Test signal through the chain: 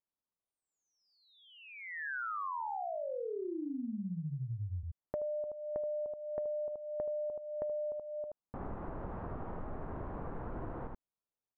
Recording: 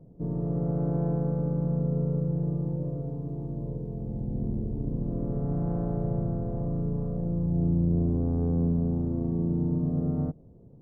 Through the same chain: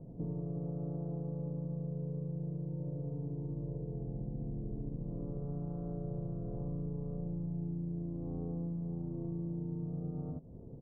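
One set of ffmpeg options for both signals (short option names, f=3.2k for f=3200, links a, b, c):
-af "lowpass=f=1.2k:w=0.5412,lowpass=f=1.2k:w=1.3066,aecho=1:1:77:0.668,acompressor=threshold=-38dB:ratio=10,volume=2dB"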